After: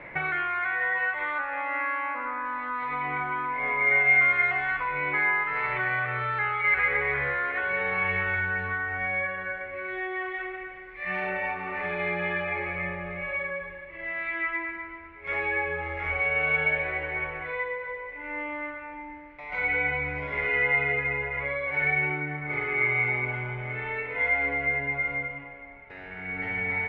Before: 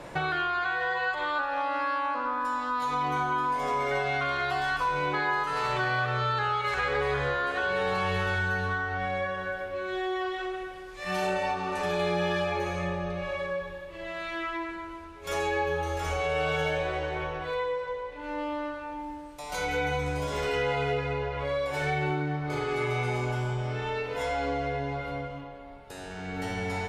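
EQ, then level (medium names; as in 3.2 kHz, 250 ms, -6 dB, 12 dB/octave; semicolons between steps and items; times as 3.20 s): four-pole ladder low-pass 2.2 kHz, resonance 85%; +8.0 dB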